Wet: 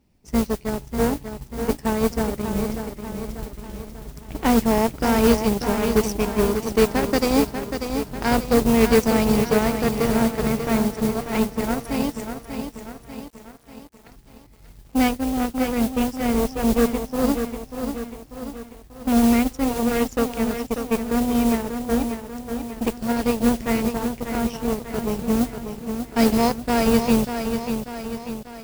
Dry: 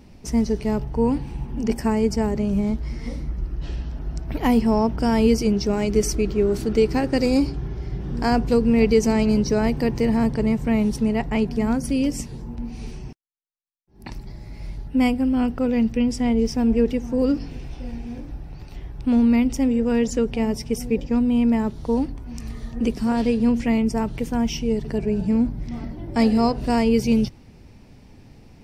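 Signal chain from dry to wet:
time-frequency box erased 0:10.78–0:11.27, 790–3,300 Hz
harmonic generator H 5 −26 dB, 7 −16 dB, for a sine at −6 dBFS
noise that follows the level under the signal 16 dB
feedback echo at a low word length 591 ms, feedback 55%, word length 8 bits, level −7.5 dB

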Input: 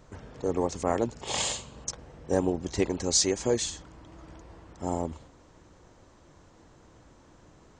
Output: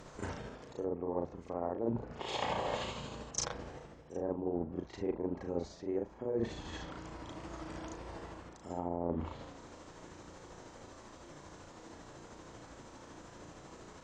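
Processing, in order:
treble cut that deepens with the level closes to 900 Hz, closed at −25 dBFS
low-shelf EQ 150 Hz −8.5 dB
reversed playback
downward compressor 12 to 1, threshold −38 dBFS, peak gain reduction 17.5 dB
reversed playback
time stretch by overlap-add 1.8×, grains 157 ms
level +7.5 dB

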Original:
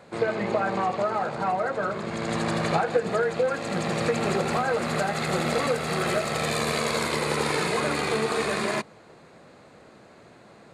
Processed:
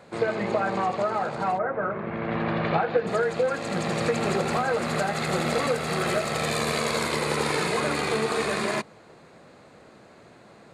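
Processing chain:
0:01.57–0:03.06: low-pass filter 1,800 Hz → 4,200 Hz 24 dB per octave

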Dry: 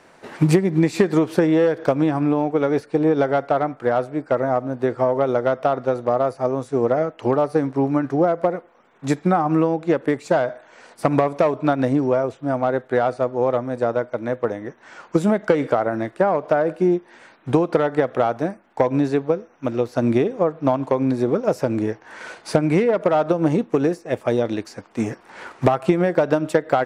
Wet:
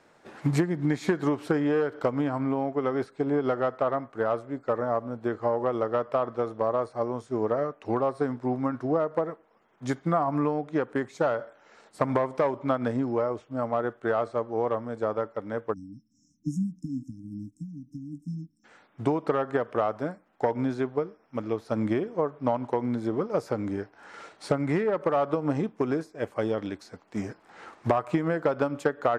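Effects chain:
dynamic equaliser 1,300 Hz, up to +6 dB, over −33 dBFS, Q 0.99
time-frequency box erased 0:14.47–0:17.15, 340–5,600 Hz
speed change −8%
level −9 dB

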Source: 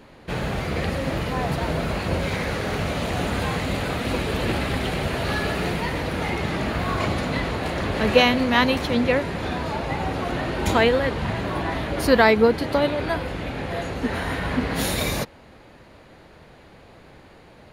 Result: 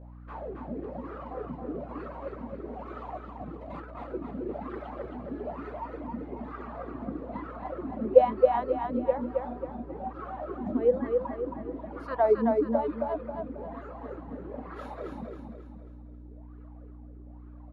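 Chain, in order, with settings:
reverb reduction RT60 1.9 s
LFO wah 1.1 Hz 230–1,300 Hz, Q 7.6
0:03.17–0:04.08: compressor whose output falls as the input rises −47 dBFS, ratio −0.5
mains hum 60 Hz, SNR 14 dB
tilt shelving filter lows +3.5 dB, about 1,400 Hz
on a send: repeating echo 270 ms, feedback 43%, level −4 dB

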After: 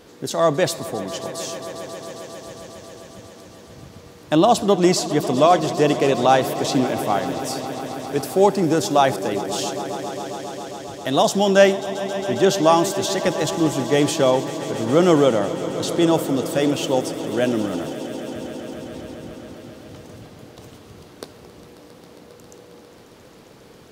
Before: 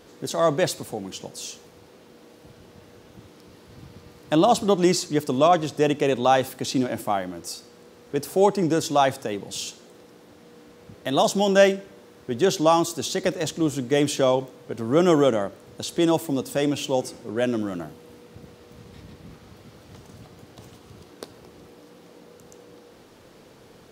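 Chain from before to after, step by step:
echo that builds up and dies away 135 ms, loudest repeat 5, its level −17 dB
level +3 dB

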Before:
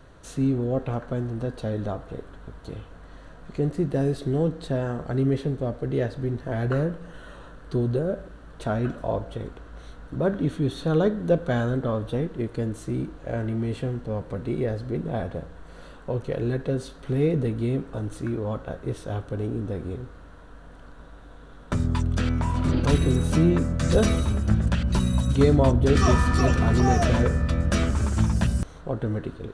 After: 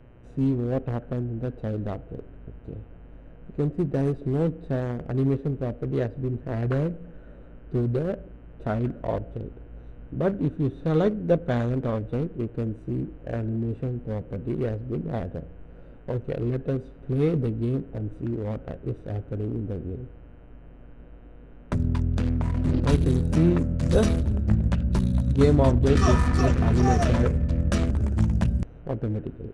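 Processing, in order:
adaptive Wiener filter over 41 samples
hum with harmonics 120 Hz, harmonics 26, −57 dBFS −6 dB per octave

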